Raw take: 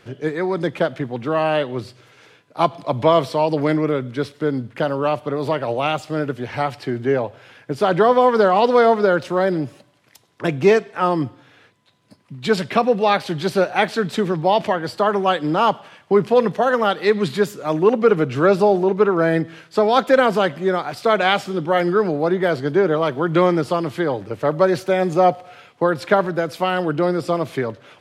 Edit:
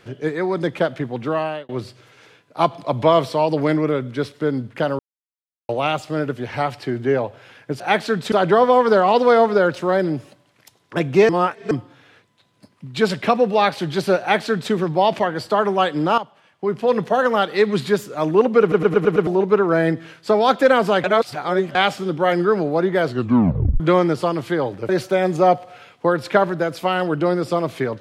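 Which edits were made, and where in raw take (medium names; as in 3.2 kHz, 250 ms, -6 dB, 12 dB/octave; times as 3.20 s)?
1.28–1.69 s: fade out
4.99–5.69 s: mute
10.77–11.19 s: reverse
13.68–14.20 s: copy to 7.80 s
15.66–16.54 s: fade in quadratic, from -13.5 dB
18.09 s: stutter in place 0.11 s, 6 plays
20.52–21.23 s: reverse
22.57 s: tape stop 0.71 s
24.37–24.66 s: delete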